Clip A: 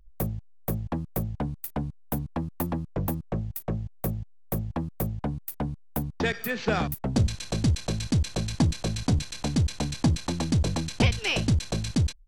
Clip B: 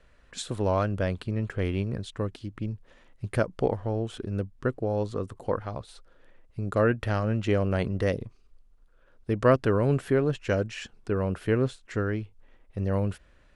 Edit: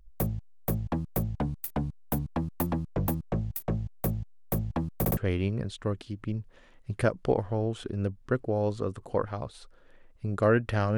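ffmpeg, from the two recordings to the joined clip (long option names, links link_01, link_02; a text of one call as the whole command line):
ffmpeg -i cue0.wav -i cue1.wav -filter_complex "[0:a]apad=whole_dur=10.97,atrim=end=10.97,asplit=3[link_01][link_02][link_03];[link_01]atrim=end=5.052[link_04];[link_02]atrim=start=4.988:end=5.052[link_05];[link_03]atrim=start=4.988:end=5.052[link_06];[1:a]atrim=start=1.508:end=7.31[link_07];[link_04][link_05]acrossfade=duration=0.004:curve1=hsin:curve2=hsin[link_08];[link_08][link_06]acrossfade=duration=0.004:curve1=hsin:curve2=hsin[link_09];[link_09][link_07]acrossfade=duration=0.004:curve1=hsin:curve2=hsin" out.wav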